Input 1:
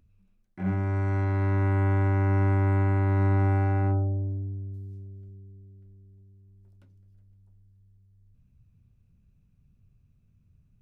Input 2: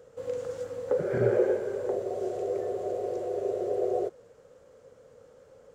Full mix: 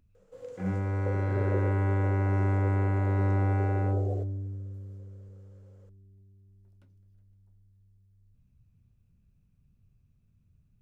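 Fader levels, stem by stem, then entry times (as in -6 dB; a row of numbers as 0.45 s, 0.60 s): -3.0 dB, -10.0 dB; 0.00 s, 0.15 s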